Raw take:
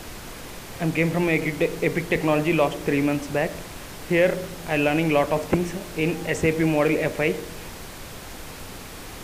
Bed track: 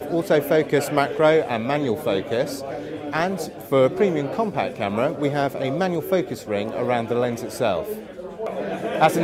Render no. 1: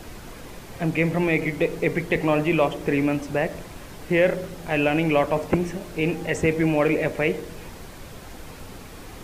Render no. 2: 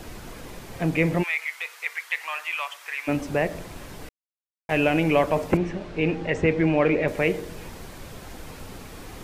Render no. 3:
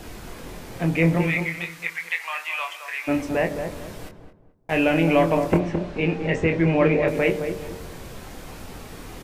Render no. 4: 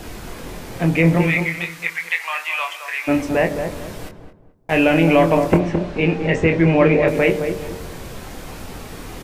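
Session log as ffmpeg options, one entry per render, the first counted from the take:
-af "afftdn=nr=6:nf=-39"
-filter_complex "[0:a]asplit=3[a][b][c];[a]afade=t=out:st=1.22:d=0.02[d];[b]highpass=f=1.1k:w=0.5412,highpass=f=1.1k:w=1.3066,afade=t=in:st=1.22:d=0.02,afade=t=out:st=3.07:d=0.02[e];[c]afade=t=in:st=3.07:d=0.02[f];[d][e][f]amix=inputs=3:normalize=0,asettb=1/sr,asplit=3[g][h][i];[g]atrim=end=5.574[j];[h]atrim=start=5.57:end=7.08,asetpts=PTS-STARTPTS,afade=t=in:d=0.004:c=qsin,afade=t=out:st=1.506:d=0.004:c=qsin,lowpass=3.9k[k];[i]atrim=start=7.076[l];[j][k]acrossfade=d=0.004:c1=hsin:c2=qsin[m];[m][l]acrossfade=d=0.004:c1=qsin:c2=hsin,asplit=3[n][o][p];[n]atrim=end=4.09,asetpts=PTS-STARTPTS,afade=t=out:st=4.086:d=0.004:c=hsin[q];[o]atrim=start=4.09:end=4.69,asetpts=PTS-STARTPTS,volume=0[r];[p]atrim=start=4.69,asetpts=PTS-STARTPTS,afade=t=in:d=0.004:c=hsin[s];[q][r][s]concat=n=3:v=0:a=1"
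-filter_complex "[0:a]asplit=2[a][b];[b]adelay=24,volume=-6dB[c];[a][c]amix=inputs=2:normalize=0,asplit=2[d][e];[e]adelay=216,lowpass=f=970:p=1,volume=-6dB,asplit=2[f][g];[g]adelay=216,lowpass=f=970:p=1,volume=0.35,asplit=2[h][i];[i]adelay=216,lowpass=f=970:p=1,volume=0.35,asplit=2[j][k];[k]adelay=216,lowpass=f=970:p=1,volume=0.35[l];[d][f][h][j][l]amix=inputs=5:normalize=0"
-af "volume=5dB,alimiter=limit=-3dB:level=0:latency=1"

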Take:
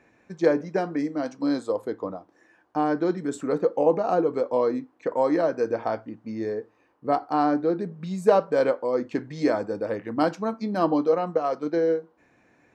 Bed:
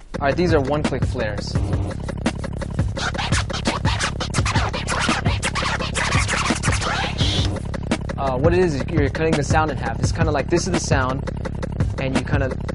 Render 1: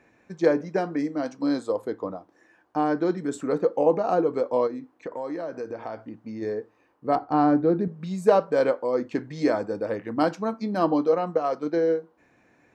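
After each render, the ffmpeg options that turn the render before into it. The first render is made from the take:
-filter_complex "[0:a]asplit=3[a][b][c];[a]afade=t=out:st=4.66:d=0.02[d];[b]acompressor=threshold=-33dB:ratio=2.5:attack=3.2:release=140:knee=1:detection=peak,afade=t=in:st=4.66:d=0.02,afade=t=out:st=6.41:d=0.02[e];[c]afade=t=in:st=6.41:d=0.02[f];[d][e][f]amix=inputs=3:normalize=0,asettb=1/sr,asplit=3[g][h][i];[g]atrim=end=7.154[j];[h]atrim=start=7.15:end=7.88,asetpts=PTS-STARTPTS,afade=t=in:d=0.004:c=qsin,afade=t=out:st=0.726:d=0.004:c=qsin,aemphasis=mode=reproduction:type=bsi[k];[i]atrim=start=7.876[l];[j][k]acrossfade=d=0.004:c1=hsin:c2=qsin[m];[m][l]acrossfade=d=0.004:c1=qsin:c2=hsin"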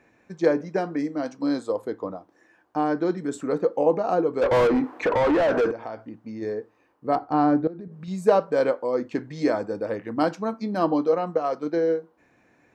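-filter_complex "[0:a]asplit=3[a][b][c];[a]afade=t=out:st=4.41:d=0.02[d];[b]asplit=2[e][f];[f]highpass=f=720:p=1,volume=34dB,asoftclip=type=tanh:threshold=-12dB[g];[e][g]amix=inputs=2:normalize=0,lowpass=f=1.4k:p=1,volume=-6dB,afade=t=in:st=4.41:d=0.02,afade=t=out:st=5.7:d=0.02[h];[c]afade=t=in:st=5.7:d=0.02[i];[d][h][i]amix=inputs=3:normalize=0,asettb=1/sr,asplit=3[j][k][l];[j]atrim=end=7.674[m];[k]atrim=start=7.67:end=8.08,asetpts=PTS-STARTPTS,afade=t=in:d=0.004:c=qsin,afade=t=out:st=0.406:d=0.004:c=qsin,acompressor=threshold=-34dB:ratio=12:attack=3.2:release=140:knee=1:detection=peak[n];[l]atrim=start=8.076[o];[m][n]acrossfade=d=0.004:c1=hsin:c2=qsin[p];[p][o]acrossfade=d=0.004:c1=qsin:c2=hsin"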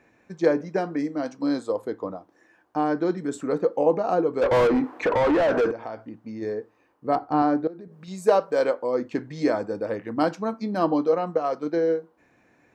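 -filter_complex "[0:a]asettb=1/sr,asplit=3[a][b][c];[a]atrim=end=7.424[d];[b]atrim=start=7.42:end=8.74,asetpts=PTS-STARTPTS,afade=t=in:d=0.004:c=qsin,afade=t=out:st=1.316:d=0.004:c=qsin,bass=f=250:g=-8,treble=f=4k:g=4[e];[c]atrim=start=8.736[f];[d][e]acrossfade=d=0.004:c1=hsin:c2=qsin[g];[g][f]acrossfade=d=0.004:c1=qsin:c2=hsin"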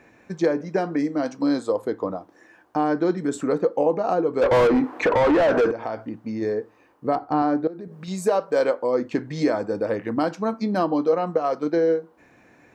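-filter_complex "[0:a]asplit=2[a][b];[b]acompressor=threshold=-31dB:ratio=6,volume=1.5dB[c];[a][c]amix=inputs=2:normalize=0,alimiter=limit=-10.5dB:level=0:latency=1:release=286"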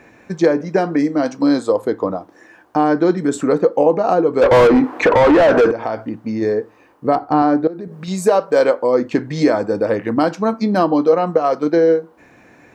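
-af "volume=7dB"

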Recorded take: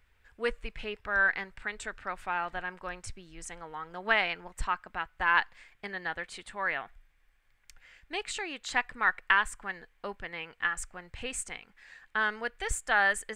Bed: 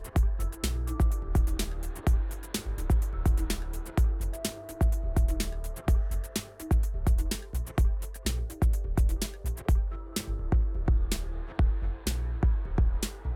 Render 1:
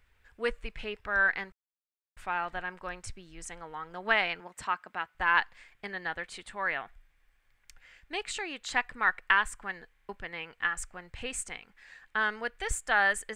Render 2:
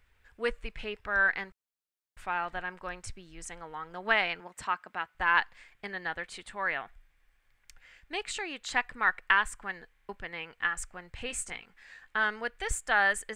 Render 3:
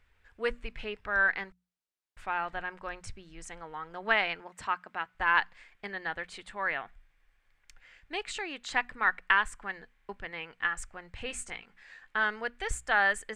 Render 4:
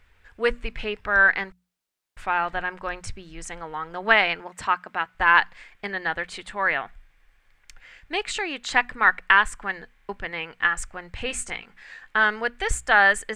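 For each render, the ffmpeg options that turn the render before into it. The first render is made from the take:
-filter_complex "[0:a]asettb=1/sr,asplit=3[a][b][c];[a]atrim=end=1.524[d];[b]atrim=start=1.52:end=2.17,asetpts=PTS-STARTPTS,afade=t=in:d=0.004:c=qsin,afade=t=out:st=0.646:d=0.004:c=qsin,acrusher=bits=2:mix=0:aa=0.5[e];[c]atrim=start=2.166[f];[d][e]acrossfade=d=0.004:c1=hsin:c2=qsin[g];[g][f]acrossfade=d=0.004:c1=qsin:c2=hsin,asettb=1/sr,asplit=3[h][i][j];[h]atrim=end=4.404[k];[i]atrim=start=4.4:end=5.15,asetpts=PTS-STARTPTS,afade=t=in:d=0.004:c=qsin,afade=t=out:st=0.746:d=0.004:c=qsin,highpass=170[l];[j]atrim=start=5.146[m];[k][l]acrossfade=d=0.004:c1=hsin:c2=qsin[n];[n][m]acrossfade=d=0.004:c1=qsin:c2=hsin,asplit=5[o][p][q][r][s];[o]atrim=end=9.972[t];[p]atrim=start=9.928:end=9.972[u];[q]atrim=start=9.928:end=9.972[v];[r]atrim=start=9.928:end=9.972[w];[s]atrim=start=10.088[x];[t][u]acrossfade=d=0.004:c1=hsin:c2=hsin[y];[y][v]acrossfade=d=0.004:c1=hsin:c2=hsin[z];[z][w]acrossfade=d=0.004:c1=hsin:c2=hsin[aa];[aa][x]acrossfade=d=0.004:c1=hsin:c2=hsin"
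-filter_complex "[0:a]asettb=1/sr,asplit=3[a][b][c];[a]atrim=end=11.274[d];[b]atrim=start=11.27:end=12.25,asetpts=PTS-STARTPTS,afade=t=in:d=0.004:c=qsin,afade=t=out:st=0.976:d=0.004:c=qsin,asplit=2[e][f];[f]adelay=17,volume=-8dB[g];[e][g]amix=inputs=2:normalize=0,atrim=end_sample=43218[h];[c]atrim=start=12.246[i];[d][h]acrossfade=d=0.004:c1=hsin:c2=qsin[j];[j][i]acrossfade=d=0.004:c1=qsin:c2=hsin"
-af "highshelf=f=9.4k:g=-10.5,bandreject=f=60:t=h:w=6,bandreject=f=120:t=h:w=6,bandreject=f=180:t=h:w=6,bandreject=f=240:t=h:w=6"
-af "volume=8.5dB,alimiter=limit=-2dB:level=0:latency=1"

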